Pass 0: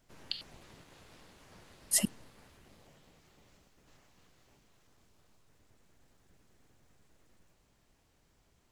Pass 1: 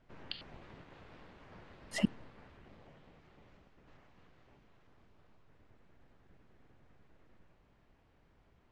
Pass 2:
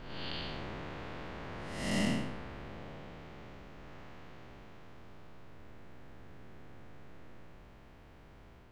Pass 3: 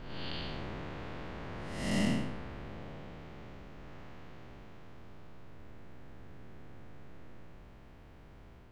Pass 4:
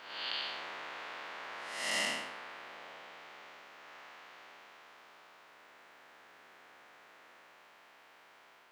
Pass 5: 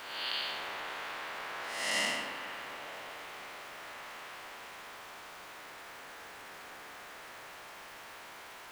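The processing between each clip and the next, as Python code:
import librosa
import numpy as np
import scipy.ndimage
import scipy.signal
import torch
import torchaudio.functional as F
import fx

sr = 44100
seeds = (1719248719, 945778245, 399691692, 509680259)

y1 = scipy.signal.sosfilt(scipy.signal.butter(2, 2400.0, 'lowpass', fs=sr, output='sos'), x)
y1 = y1 * librosa.db_to_amplitude(3.0)
y2 = fx.spec_blur(y1, sr, span_ms=287.0)
y2 = y2 * librosa.db_to_amplitude(14.0)
y3 = fx.low_shelf(y2, sr, hz=370.0, db=3.5)
y3 = y3 * librosa.db_to_amplitude(-1.0)
y4 = scipy.signal.sosfilt(scipy.signal.butter(2, 960.0, 'highpass', fs=sr, output='sos'), y3)
y4 = y4 * librosa.db_to_amplitude(6.0)
y5 = y4 + 0.5 * 10.0 ** (-47.5 / 20.0) * np.sign(y4)
y5 = fx.rev_spring(y5, sr, rt60_s=3.1, pass_ms=(38,), chirp_ms=25, drr_db=9.5)
y5 = y5 * librosa.db_to_amplitude(1.0)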